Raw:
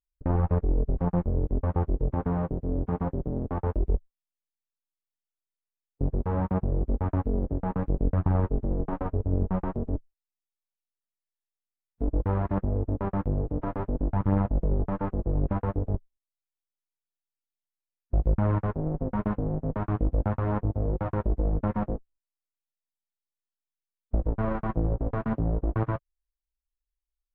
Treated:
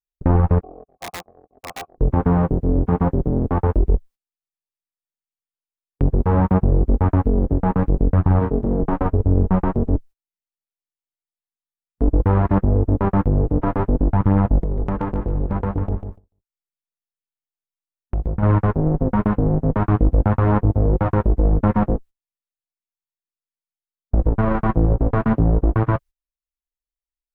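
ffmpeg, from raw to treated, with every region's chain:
ffmpeg -i in.wav -filter_complex "[0:a]asettb=1/sr,asplit=3[link_01][link_02][link_03];[link_01]atrim=end=0.614[link_04];[link_02]atrim=start=0.61:end=1.98,asetpts=PTS-STARTPTS,afade=type=in:duration=0.004:curve=qsin,afade=type=out:start_time=1.366:duration=0.004:curve=qsin,agate=range=-10dB:threshold=-45dB:ratio=16:release=100:detection=peak,asplit=3[link_05][link_06][link_07];[link_05]bandpass=frequency=730:width_type=q:width=8,volume=0dB[link_08];[link_06]bandpass=frequency=1090:width_type=q:width=8,volume=-6dB[link_09];[link_07]bandpass=frequency=2440:width_type=q:width=8,volume=-9dB[link_10];[link_08][link_09][link_10]amix=inputs=3:normalize=0,aeval=exprs='(mod(59.6*val(0)+1,2)-1)/59.6':channel_layout=same[link_11];[link_03]atrim=start=1.976[link_12];[link_04][link_11]acrossfade=duration=0.004:curve1=hsin:curve2=qsin[link_13];[link_13][link_12]acrossfade=duration=0.004:curve1=qsin:curve2=hsin,asettb=1/sr,asplit=3[link_14][link_15][link_16];[link_14]atrim=end=8.394[link_17];[link_15]atrim=start=8.39:end=8.81,asetpts=PTS-STARTPTS,afade=type=in:duration=0.004:curve=qsin,afade=type=out:start_time=0.416:duration=0.004:curve=qsin,highpass=frequency=110:poles=1,asplit=2[link_18][link_19];[link_19]adelay=26,volume=-6dB[link_20];[link_18][link_20]amix=inputs=2:normalize=0,atrim=end_sample=18522[link_21];[link_16]atrim=start=8.806[link_22];[link_17][link_21]acrossfade=duration=0.004:curve1=hsin:curve2=qsin[link_23];[link_23][link_22]acrossfade=duration=0.004:curve1=qsin:curve2=hsin,asettb=1/sr,asplit=3[link_24][link_25][link_26];[link_24]atrim=end=14.604[link_27];[link_25]atrim=start=14.6:end=18.43,asetpts=PTS-STARTPTS,afade=type=in:duration=0.004:curve=qsin,afade=type=out:start_time=3.826:duration=0.004:curve=qsin,acompressor=threshold=-28dB:ratio=12:attack=3.2:release=140:knee=1:detection=peak,asoftclip=type=hard:threshold=-22.5dB,aecho=1:1:146|292|438:0.398|0.115|0.0335,atrim=end_sample=168903[link_28];[link_26]atrim=start=18.426[link_29];[link_27][link_28]acrossfade=duration=0.004:curve1=hsin:curve2=qsin[link_30];[link_30][link_29]acrossfade=duration=0.004:curve1=qsin:curve2=hsin,agate=range=-20dB:threshold=-46dB:ratio=16:detection=peak,equalizer=frequency=600:width=5.6:gain=-4,alimiter=level_in=17.5dB:limit=-1dB:release=50:level=0:latency=1,volume=-6.5dB" out.wav

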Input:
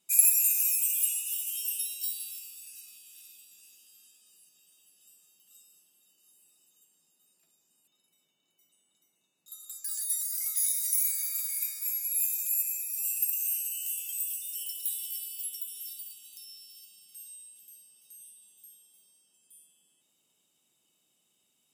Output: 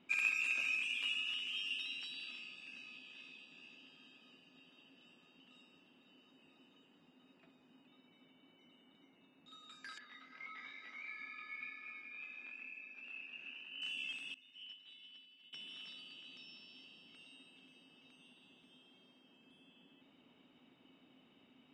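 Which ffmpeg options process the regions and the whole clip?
ffmpeg -i in.wav -filter_complex "[0:a]asettb=1/sr,asplit=3[link_01][link_02][link_03];[link_01]atrim=end=9.984[link_04];[link_02]atrim=start=9.98:end=13.82,asetpts=PTS-STARTPTS,afade=type=in:duration=0.004:curve=qsin,afade=type=out:start_time=3.836:duration=0.004:curve=qsin,highpass=180,lowpass=3700,aemphasis=mode=reproduction:type=75fm,flanger=delay=20:depth=5.1:speed=1[link_05];[link_03]atrim=start=13.816[link_06];[link_04][link_05]acrossfade=duration=0.004:curve1=hsin:curve2=qsin[link_07];[link_07][link_06]acrossfade=duration=0.004:curve1=qsin:curve2=hsin,asettb=1/sr,asplit=3[link_08][link_09][link_10];[link_08]atrim=end=14.344[link_11];[link_09]atrim=start=14.34:end=15.53,asetpts=PTS-STARTPTS,afade=type=in:duration=0.004:curve=qsin,afade=type=out:start_time=1.186:duration=0.004:curve=qsin,acrossover=split=6300[link_12][link_13];[link_13]acompressor=threshold=-50dB:ratio=4:attack=1:release=60[link_14];[link_12][link_14]amix=inputs=2:normalize=0,agate=range=-33dB:threshold=-39dB:ratio=3:release=100:detection=peak,equalizer=frequency=5100:width_type=o:width=0.32:gain=-6.5[link_15];[link_10]atrim=start=15.526[link_16];[link_11][link_15]acrossfade=duration=0.004:curve1=hsin:curve2=qsin[link_17];[link_17][link_16]acrossfade=duration=0.004:curve1=qsin:curve2=hsin,lowpass=frequency=2700:width=0.5412,lowpass=frequency=2700:width=1.3066,equalizer=frequency=260:width_type=o:width=0.29:gain=14,volume=12.5dB" out.wav

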